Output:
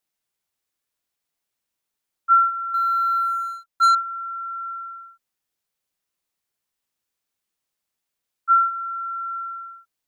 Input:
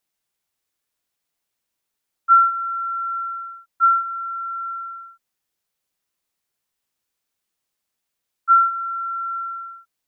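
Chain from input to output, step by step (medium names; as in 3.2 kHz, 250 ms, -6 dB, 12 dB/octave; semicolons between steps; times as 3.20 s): 2.74–3.95 s: waveshaping leveller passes 2; trim -2.5 dB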